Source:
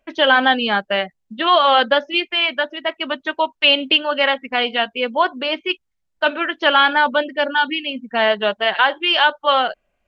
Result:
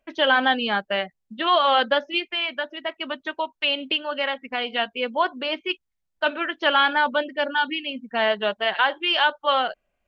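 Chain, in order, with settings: 2.18–4.72 compressor 1.5:1, threshold -22 dBFS, peak gain reduction 5 dB; gain -5 dB

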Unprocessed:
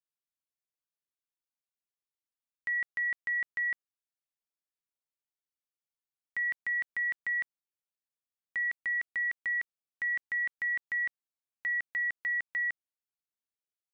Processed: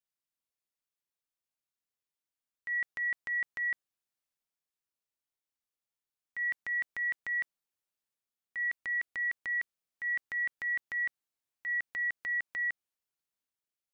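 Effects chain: transient shaper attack -6 dB, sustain +3 dB

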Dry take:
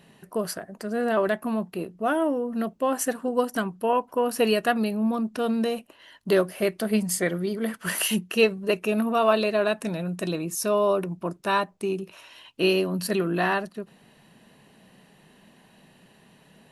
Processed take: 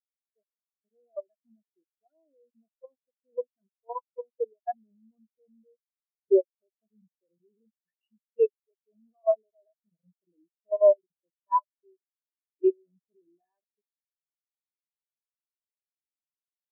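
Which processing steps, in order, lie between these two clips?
Wiener smoothing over 25 samples; AGC gain up to 7.5 dB; overdrive pedal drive 10 dB, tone 3100 Hz, clips at -2 dBFS; level quantiser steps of 13 dB; bit-crush 5-bit; spectral expander 4:1; gain -4.5 dB

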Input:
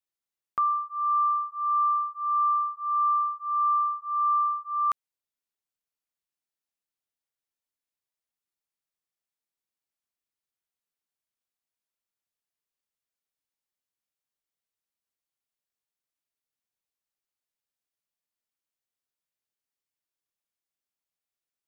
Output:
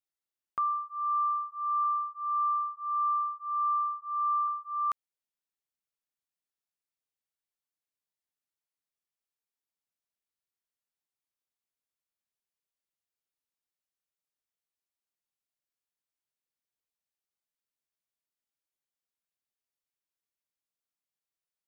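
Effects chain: 1.84–4.48 loudest bins only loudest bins 4; gain -4.5 dB

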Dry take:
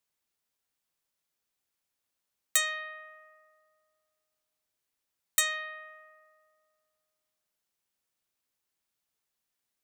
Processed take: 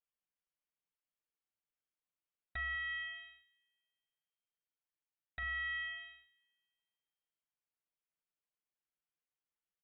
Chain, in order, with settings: Chebyshev high-pass 460 Hz, order 8; comb 6.9 ms, depth 77%; compressor 5:1, threshold -39 dBFS, peak gain reduction 17 dB; sample leveller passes 3; 2.75–5.43 air absorption 93 m; Schroeder reverb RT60 0.35 s, combs from 30 ms, DRR 12.5 dB; inverted band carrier 3800 Hz; gain -8 dB

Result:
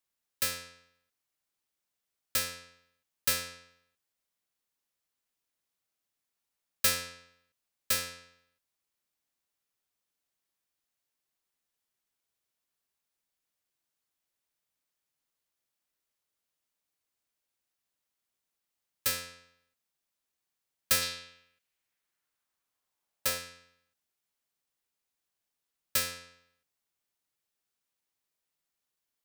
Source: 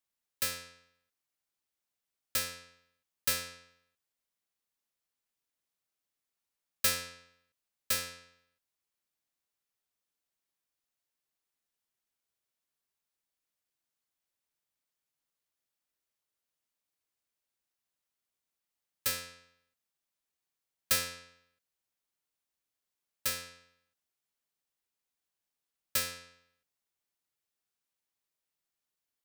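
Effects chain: 21.01–23.37 bell 4200 Hz -> 640 Hz +7.5 dB 1.1 oct; gain +2 dB

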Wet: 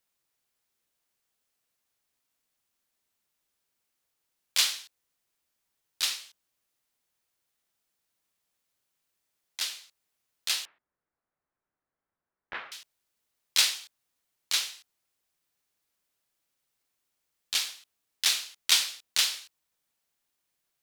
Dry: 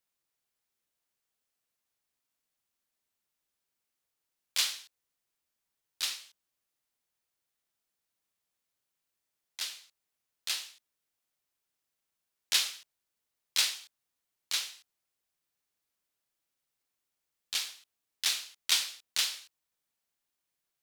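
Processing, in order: 10.65–12.72 LPF 1700 Hz 24 dB/oct; gain +4.5 dB

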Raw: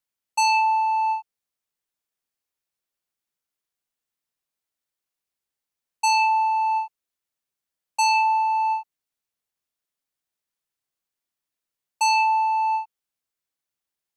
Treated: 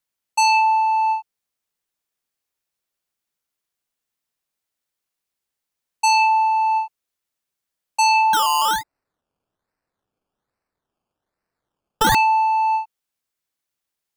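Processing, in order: 8.33–12.15 decimation with a swept rate 18×, swing 60% 1.2 Hz; gain +3.5 dB

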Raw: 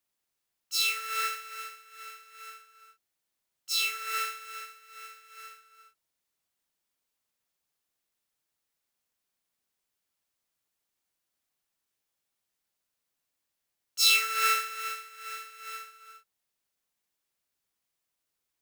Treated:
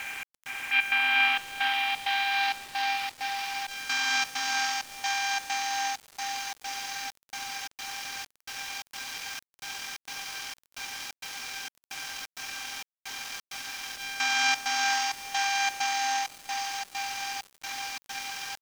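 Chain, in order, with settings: per-bin compression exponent 0.2; low-pass sweep 4000 Hz -> 9900 Hz, 0.58–3.69; diffused feedback echo 0.473 s, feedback 76%, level -7.5 dB; pitch shift -9 st; step gate "xx..xxx.xx" 131 bpm -12 dB; sample gate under -31 dBFS; gain -7.5 dB

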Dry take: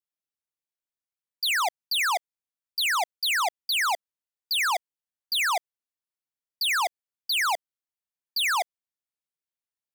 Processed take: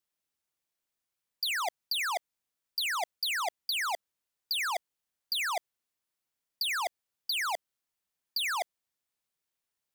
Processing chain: negative-ratio compressor -31 dBFS, ratio -1

